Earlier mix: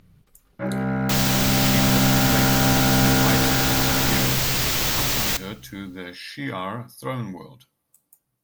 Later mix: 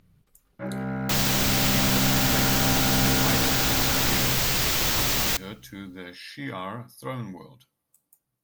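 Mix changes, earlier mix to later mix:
speech -4.5 dB; first sound -6.0 dB; second sound: send -9.0 dB

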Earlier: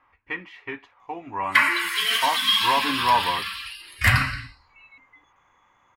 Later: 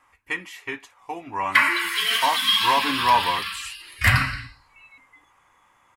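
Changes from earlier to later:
speech: remove air absorption 300 m; reverb: on, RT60 0.60 s

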